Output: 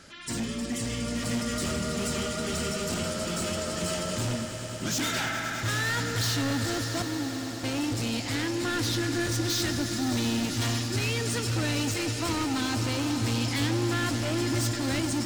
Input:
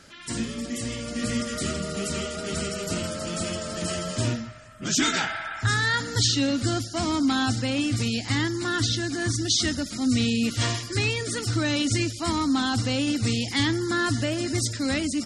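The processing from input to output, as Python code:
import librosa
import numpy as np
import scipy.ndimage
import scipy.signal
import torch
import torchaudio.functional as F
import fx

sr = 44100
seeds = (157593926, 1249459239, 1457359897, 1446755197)

y = np.clip(10.0 ** (27.5 / 20.0) * x, -1.0, 1.0) / 10.0 ** (27.5 / 20.0)
y = fx.vowel_filter(y, sr, vowel='u', at=(7.02, 7.64))
y = fx.echo_swell(y, sr, ms=103, loudest=5, wet_db=-14)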